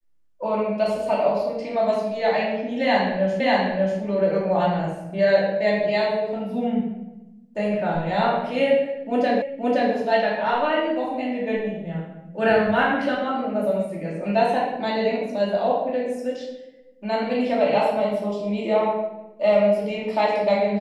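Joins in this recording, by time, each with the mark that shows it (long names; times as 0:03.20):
0:03.40: the same again, the last 0.59 s
0:09.42: the same again, the last 0.52 s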